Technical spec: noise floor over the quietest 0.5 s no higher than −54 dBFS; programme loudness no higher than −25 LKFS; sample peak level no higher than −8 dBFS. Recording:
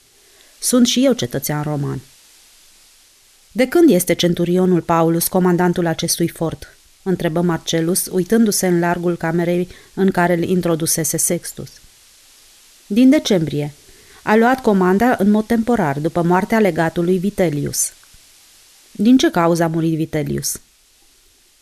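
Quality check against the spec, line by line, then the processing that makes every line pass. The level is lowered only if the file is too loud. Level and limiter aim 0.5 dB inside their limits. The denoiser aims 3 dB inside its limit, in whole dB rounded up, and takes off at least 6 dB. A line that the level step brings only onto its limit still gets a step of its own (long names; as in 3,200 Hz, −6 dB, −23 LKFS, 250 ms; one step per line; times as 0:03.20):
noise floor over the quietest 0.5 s −53 dBFS: out of spec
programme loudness −16.5 LKFS: out of spec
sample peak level −4.0 dBFS: out of spec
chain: level −9 dB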